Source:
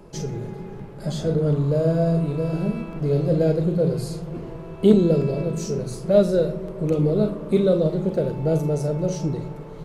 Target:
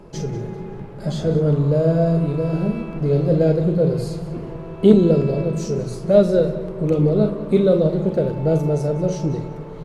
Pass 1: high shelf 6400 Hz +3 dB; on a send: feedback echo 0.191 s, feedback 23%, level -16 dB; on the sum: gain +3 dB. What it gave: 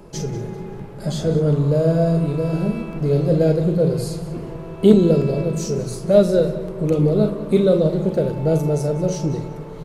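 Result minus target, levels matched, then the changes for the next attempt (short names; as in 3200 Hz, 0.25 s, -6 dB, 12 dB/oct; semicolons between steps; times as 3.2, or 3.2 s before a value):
8000 Hz band +6.0 dB
change: high shelf 6400 Hz -8.5 dB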